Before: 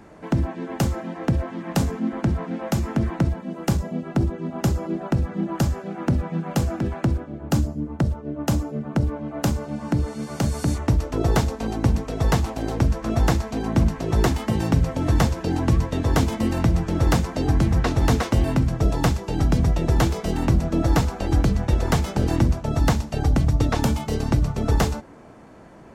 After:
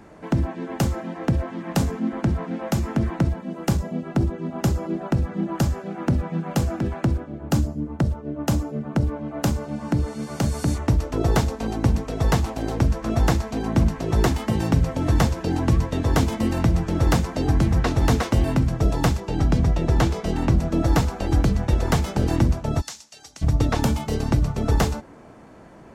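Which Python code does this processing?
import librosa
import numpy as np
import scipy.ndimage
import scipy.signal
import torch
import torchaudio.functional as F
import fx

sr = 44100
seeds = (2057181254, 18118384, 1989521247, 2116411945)

y = fx.high_shelf(x, sr, hz=10000.0, db=-10.5, at=(19.2, 20.58))
y = fx.bandpass_q(y, sr, hz=6400.0, q=1.3, at=(22.8, 23.41), fade=0.02)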